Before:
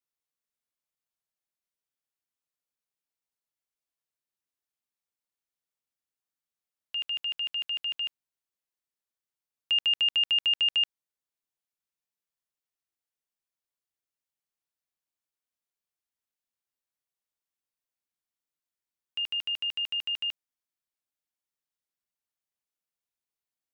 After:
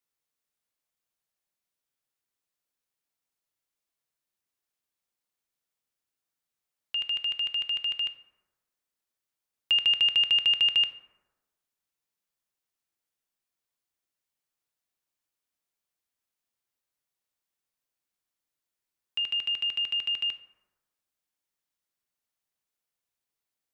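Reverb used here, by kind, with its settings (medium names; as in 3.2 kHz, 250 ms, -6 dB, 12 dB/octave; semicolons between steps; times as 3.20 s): plate-style reverb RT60 1.2 s, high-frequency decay 0.4×, DRR 10 dB; trim +3.5 dB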